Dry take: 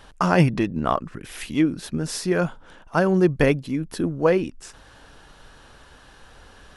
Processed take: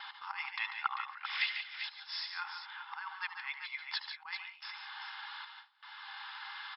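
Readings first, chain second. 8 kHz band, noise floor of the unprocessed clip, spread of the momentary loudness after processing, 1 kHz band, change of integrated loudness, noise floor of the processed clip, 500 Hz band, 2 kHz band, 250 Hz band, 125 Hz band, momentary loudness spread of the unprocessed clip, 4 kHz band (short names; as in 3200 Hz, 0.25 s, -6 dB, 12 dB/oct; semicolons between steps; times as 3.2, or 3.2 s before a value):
under -40 dB, -50 dBFS, 11 LU, -13.0 dB, -17.0 dB, -57 dBFS, under -40 dB, -7.0 dB, under -40 dB, under -40 dB, 10 LU, -1.5 dB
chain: auto swell 0.773 s; tapped delay 75/76/142/156/176/392 ms -15/-15.5/-8.5/-18/-16.5/-9 dB; FFT band-pass 780–5400 Hz; gate with hold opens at -47 dBFS; small resonant body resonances 2100/3500 Hz, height 11 dB; gain +5.5 dB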